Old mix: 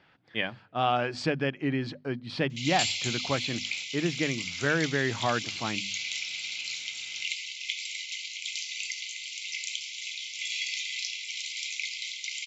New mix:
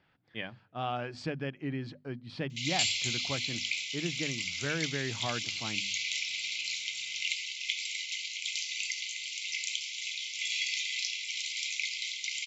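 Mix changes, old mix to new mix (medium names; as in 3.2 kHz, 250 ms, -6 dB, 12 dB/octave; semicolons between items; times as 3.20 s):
speech -9.0 dB; master: add bass shelf 160 Hz +7.5 dB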